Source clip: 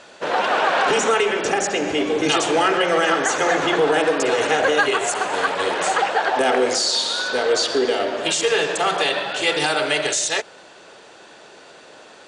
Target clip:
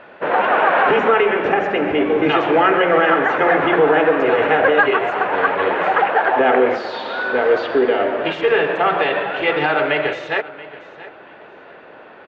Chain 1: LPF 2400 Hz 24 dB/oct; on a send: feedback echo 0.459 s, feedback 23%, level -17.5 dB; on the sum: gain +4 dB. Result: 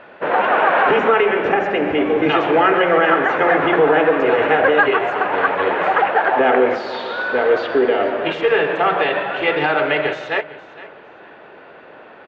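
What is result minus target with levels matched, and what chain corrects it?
echo 0.221 s early
LPF 2400 Hz 24 dB/oct; on a send: feedback echo 0.68 s, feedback 23%, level -17.5 dB; on the sum: gain +4 dB

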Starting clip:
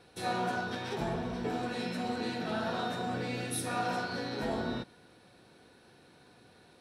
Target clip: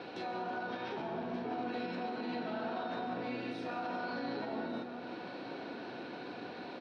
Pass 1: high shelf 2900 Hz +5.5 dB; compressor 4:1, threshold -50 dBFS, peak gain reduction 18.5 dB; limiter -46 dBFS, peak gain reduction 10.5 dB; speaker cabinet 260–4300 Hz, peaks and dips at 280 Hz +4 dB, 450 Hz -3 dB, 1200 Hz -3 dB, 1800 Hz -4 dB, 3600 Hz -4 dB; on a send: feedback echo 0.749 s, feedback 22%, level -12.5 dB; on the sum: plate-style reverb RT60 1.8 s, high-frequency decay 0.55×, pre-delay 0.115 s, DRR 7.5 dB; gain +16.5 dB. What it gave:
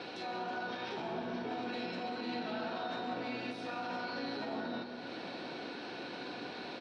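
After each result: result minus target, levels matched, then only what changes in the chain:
echo 0.432 s early; 4000 Hz band +5.0 dB
change: feedback echo 1.181 s, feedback 22%, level -12.5 dB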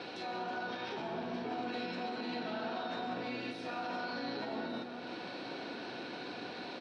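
4000 Hz band +5.0 dB
change: high shelf 2900 Hz -5 dB

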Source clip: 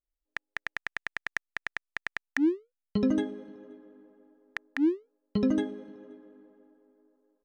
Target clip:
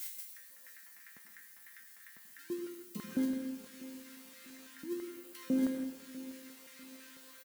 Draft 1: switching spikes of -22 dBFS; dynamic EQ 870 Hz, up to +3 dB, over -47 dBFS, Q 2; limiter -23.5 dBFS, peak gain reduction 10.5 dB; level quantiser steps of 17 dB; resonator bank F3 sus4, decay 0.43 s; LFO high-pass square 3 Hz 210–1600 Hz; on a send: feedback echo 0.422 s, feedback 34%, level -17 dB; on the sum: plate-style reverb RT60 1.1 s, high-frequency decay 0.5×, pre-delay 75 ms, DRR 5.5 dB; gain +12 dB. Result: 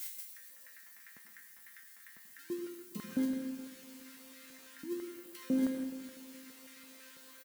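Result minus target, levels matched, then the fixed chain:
echo 0.224 s early
switching spikes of -22 dBFS; dynamic EQ 870 Hz, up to +3 dB, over -47 dBFS, Q 2; limiter -23.5 dBFS, peak gain reduction 10.5 dB; level quantiser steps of 17 dB; resonator bank F3 sus4, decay 0.43 s; LFO high-pass square 3 Hz 210–1600 Hz; on a send: feedback echo 0.646 s, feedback 34%, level -17 dB; on the sum: plate-style reverb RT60 1.1 s, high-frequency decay 0.5×, pre-delay 75 ms, DRR 5.5 dB; gain +12 dB

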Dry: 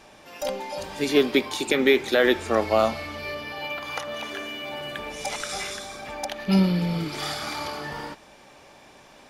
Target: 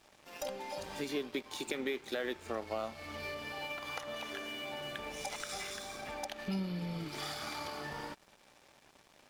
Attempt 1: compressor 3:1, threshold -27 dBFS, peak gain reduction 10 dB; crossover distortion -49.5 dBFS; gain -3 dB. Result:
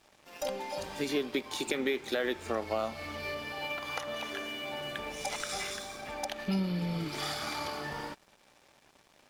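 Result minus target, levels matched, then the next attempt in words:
compressor: peak gain reduction -5 dB
compressor 3:1, threshold -34.5 dBFS, peak gain reduction 15 dB; crossover distortion -49.5 dBFS; gain -3 dB

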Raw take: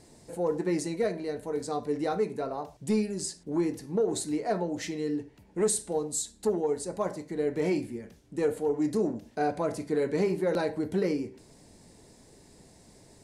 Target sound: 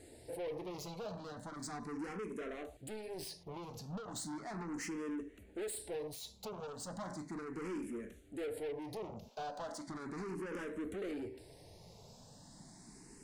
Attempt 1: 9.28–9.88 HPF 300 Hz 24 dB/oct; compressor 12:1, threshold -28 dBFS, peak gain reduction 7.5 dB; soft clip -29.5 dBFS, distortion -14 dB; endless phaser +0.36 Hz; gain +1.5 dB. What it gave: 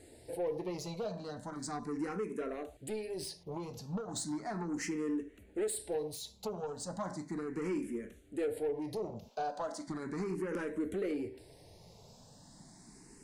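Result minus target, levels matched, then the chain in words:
soft clip: distortion -8 dB
9.28–9.88 HPF 300 Hz 24 dB/oct; compressor 12:1, threshold -28 dBFS, peak gain reduction 7.5 dB; soft clip -38.5 dBFS, distortion -7 dB; endless phaser +0.36 Hz; gain +1.5 dB

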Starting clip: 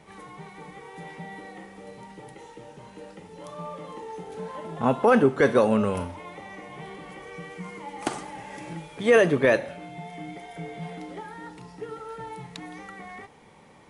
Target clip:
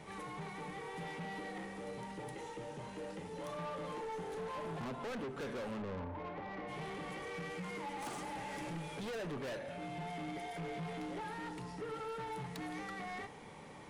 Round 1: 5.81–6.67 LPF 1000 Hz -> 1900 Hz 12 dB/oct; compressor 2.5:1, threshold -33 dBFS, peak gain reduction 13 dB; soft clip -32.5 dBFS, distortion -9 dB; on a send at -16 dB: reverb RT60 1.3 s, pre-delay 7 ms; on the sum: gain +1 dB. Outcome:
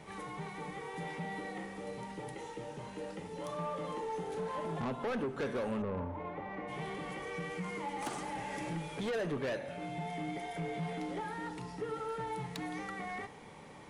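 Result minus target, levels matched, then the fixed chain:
soft clip: distortion -5 dB
5.81–6.67 LPF 1000 Hz -> 1900 Hz 12 dB/oct; compressor 2.5:1, threshold -33 dBFS, peak gain reduction 13 dB; soft clip -40.5 dBFS, distortion -4 dB; on a send at -16 dB: reverb RT60 1.3 s, pre-delay 7 ms; on the sum: gain +1 dB

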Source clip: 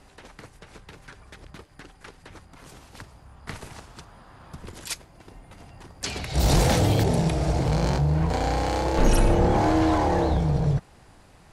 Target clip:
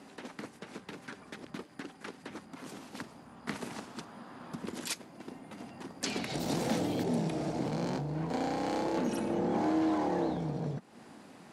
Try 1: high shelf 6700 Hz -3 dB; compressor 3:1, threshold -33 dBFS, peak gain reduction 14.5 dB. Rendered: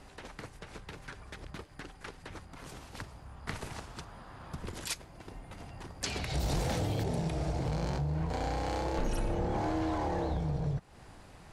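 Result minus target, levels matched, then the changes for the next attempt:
250 Hz band -4.0 dB
add after compressor: resonant high-pass 230 Hz, resonance Q 2.8

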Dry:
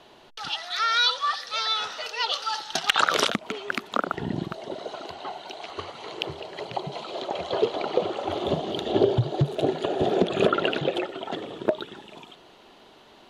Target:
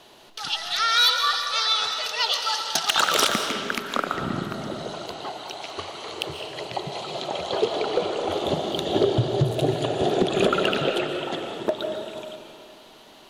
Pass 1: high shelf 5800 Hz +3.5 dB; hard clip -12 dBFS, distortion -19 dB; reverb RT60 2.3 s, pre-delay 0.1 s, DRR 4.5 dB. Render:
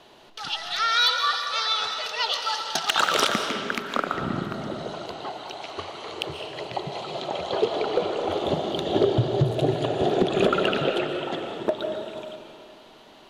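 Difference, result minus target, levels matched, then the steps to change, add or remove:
8000 Hz band -4.0 dB
change: high shelf 5800 Hz +14 dB

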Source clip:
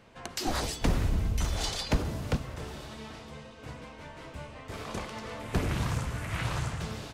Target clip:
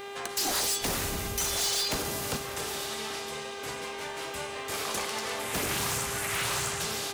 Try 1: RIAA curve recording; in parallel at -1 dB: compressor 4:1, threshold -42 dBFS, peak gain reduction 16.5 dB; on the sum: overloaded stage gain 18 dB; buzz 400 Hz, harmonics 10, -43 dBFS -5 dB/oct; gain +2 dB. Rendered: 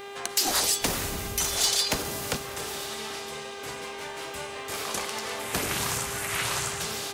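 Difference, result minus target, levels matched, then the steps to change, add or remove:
overloaded stage: distortion -12 dB
change: overloaded stage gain 28 dB

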